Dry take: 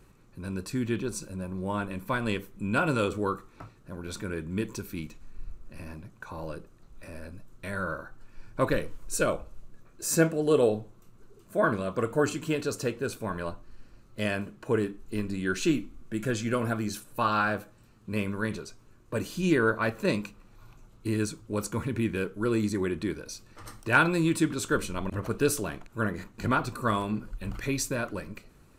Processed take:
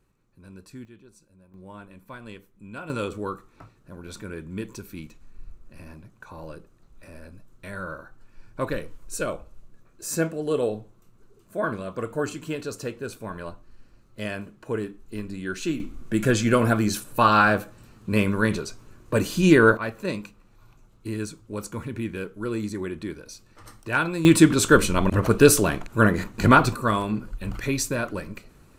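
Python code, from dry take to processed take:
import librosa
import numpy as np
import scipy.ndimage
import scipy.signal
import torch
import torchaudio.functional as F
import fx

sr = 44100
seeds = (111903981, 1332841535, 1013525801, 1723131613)

y = fx.gain(x, sr, db=fx.steps((0.0, -11.0), (0.85, -20.0), (1.54, -12.0), (2.9, -2.0), (15.8, 8.5), (19.77, -2.0), (24.25, 11.0), (26.75, 4.0)))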